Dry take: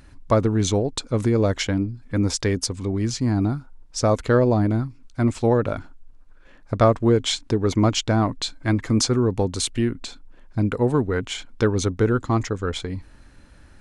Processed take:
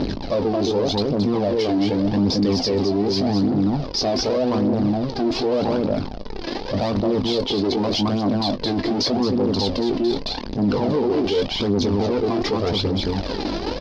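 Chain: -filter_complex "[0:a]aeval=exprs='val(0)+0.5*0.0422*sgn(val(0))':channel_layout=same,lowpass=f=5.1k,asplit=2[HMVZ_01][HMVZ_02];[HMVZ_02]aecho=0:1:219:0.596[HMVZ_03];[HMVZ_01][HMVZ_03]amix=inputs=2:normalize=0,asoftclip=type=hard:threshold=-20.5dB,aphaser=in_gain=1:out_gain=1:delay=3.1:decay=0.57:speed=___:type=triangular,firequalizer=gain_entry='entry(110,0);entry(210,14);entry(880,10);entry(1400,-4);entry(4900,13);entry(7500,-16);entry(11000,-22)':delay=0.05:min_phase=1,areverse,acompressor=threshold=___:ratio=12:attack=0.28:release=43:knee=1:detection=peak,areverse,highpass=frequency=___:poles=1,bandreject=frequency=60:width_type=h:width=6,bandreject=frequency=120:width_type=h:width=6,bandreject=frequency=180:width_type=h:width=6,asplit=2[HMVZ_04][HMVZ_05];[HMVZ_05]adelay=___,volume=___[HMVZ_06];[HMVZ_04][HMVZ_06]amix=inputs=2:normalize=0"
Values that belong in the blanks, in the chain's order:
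0.85, -16dB, 43, 20, -10dB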